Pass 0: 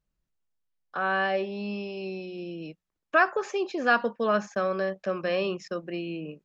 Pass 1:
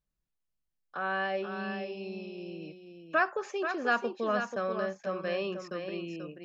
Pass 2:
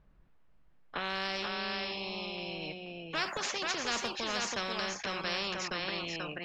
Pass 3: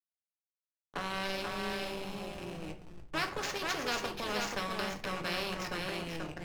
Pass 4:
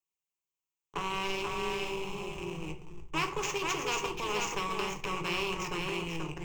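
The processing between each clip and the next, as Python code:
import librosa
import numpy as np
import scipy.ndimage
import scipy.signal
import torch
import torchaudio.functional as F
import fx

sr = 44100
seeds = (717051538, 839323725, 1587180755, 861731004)

y1 = x + 10.0 ** (-7.5 / 20.0) * np.pad(x, (int(485 * sr / 1000.0), 0))[:len(x)]
y1 = y1 * librosa.db_to_amplitude(-5.5)
y2 = fx.env_lowpass(y1, sr, base_hz=1700.0, full_db=-25.5)
y2 = fx.spectral_comp(y2, sr, ratio=4.0)
y2 = y2 * librosa.db_to_amplitude(-4.0)
y3 = fx.backlash(y2, sr, play_db=-32.0)
y3 = fx.room_shoebox(y3, sr, seeds[0], volume_m3=34.0, walls='mixed', distance_m=0.31)
y4 = fx.ripple_eq(y3, sr, per_octave=0.72, db=13)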